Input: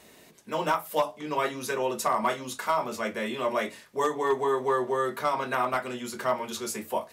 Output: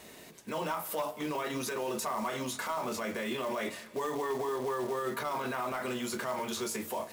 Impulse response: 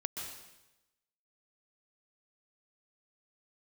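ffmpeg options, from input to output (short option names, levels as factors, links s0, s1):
-filter_complex "[0:a]acrusher=bits=4:mode=log:mix=0:aa=0.000001,alimiter=level_in=1.88:limit=0.0631:level=0:latency=1:release=27,volume=0.531,asplit=2[s0][s1];[1:a]atrim=start_sample=2205,asetrate=33516,aresample=44100[s2];[s1][s2]afir=irnorm=-1:irlink=0,volume=0.15[s3];[s0][s3]amix=inputs=2:normalize=0,volume=1.19"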